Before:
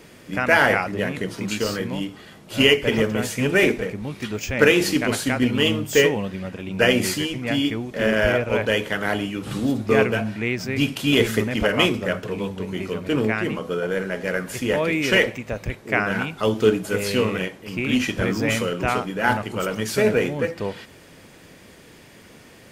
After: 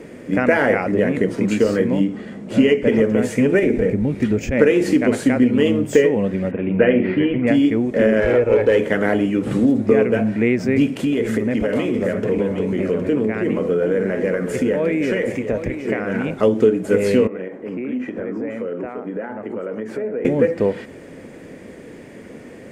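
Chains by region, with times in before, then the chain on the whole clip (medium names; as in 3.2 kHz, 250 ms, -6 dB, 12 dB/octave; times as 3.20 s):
2.00–2.88 s: low-pass 9.7 kHz + peaking EQ 210 Hz +9 dB 0.44 oct
3.59–4.52 s: bass shelf 150 Hz +11 dB + compression 3:1, threshold -19 dBFS + band-stop 1.1 kHz, Q 9.4
6.51–7.47 s: steep low-pass 3 kHz + flutter echo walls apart 8.3 m, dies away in 0.25 s
8.20–8.79 s: comb 2.3 ms, depth 54% + valve stage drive 14 dB, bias 0.2 + decimation joined by straight lines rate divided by 2×
10.86–16.41 s: compression 10:1, threshold -25 dBFS + delay 764 ms -9.5 dB
17.27–20.25 s: three-band isolator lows -13 dB, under 200 Hz, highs -17 dB, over 2.1 kHz + compression, threshold -34 dBFS
whole clip: tilt shelf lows +7.5 dB, about 1.3 kHz; compression 5:1, threshold -17 dBFS; ten-band graphic EQ 250 Hz +8 dB, 500 Hz +9 dB, 2 kHz +11 dB, 8 kHz +10 dB; trim -4 dB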